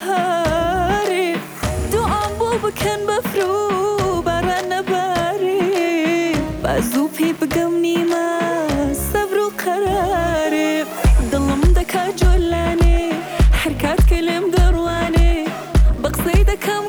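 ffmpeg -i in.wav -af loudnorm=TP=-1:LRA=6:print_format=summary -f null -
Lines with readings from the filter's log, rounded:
Input Integrated:    -17.9 LUFS
Input True Peak:      -5.0 dBTP
Input LRA:             2.0 LU
Input Threshold:     -27.9 LUFS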